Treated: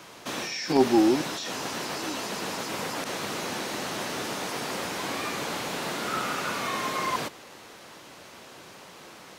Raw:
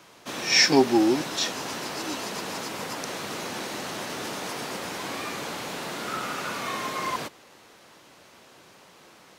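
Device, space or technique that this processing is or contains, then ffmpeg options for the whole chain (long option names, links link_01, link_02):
de-esser from a sidechain: -filter_complex "[0:a]asplit=2[link_01][link_02];[link_02]highpass=4100,apad=whole_len=413755[link_03];[link_01][link_03]sidechaincompress=threshold=-42dB:ratio=5:attack=1:release=25,volume=5.5dB"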